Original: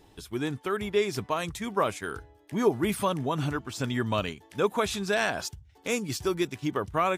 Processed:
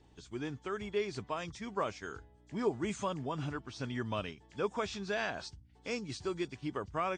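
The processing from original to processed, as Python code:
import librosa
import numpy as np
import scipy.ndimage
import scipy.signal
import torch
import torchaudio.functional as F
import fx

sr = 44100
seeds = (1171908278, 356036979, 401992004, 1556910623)

y = fx.freq_compress(x, sr, knee_hz=3200.0, ratio=1.5)
y = fx.add_hum(y, sr, base_hz=60, snr_db=26)
y = y * 10.0 ** (-8.5 / 20.0)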